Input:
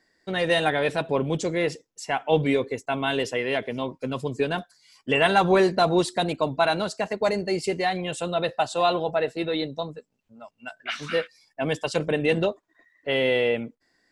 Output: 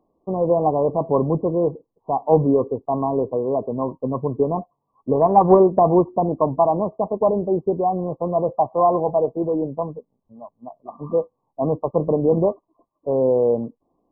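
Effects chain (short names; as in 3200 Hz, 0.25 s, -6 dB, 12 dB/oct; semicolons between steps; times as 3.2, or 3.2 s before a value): brick-wall FIR low-pass 1200 Hz; 5.21–5.8 transient shaper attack +4 dB, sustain -3 dB; gain +5.5 dB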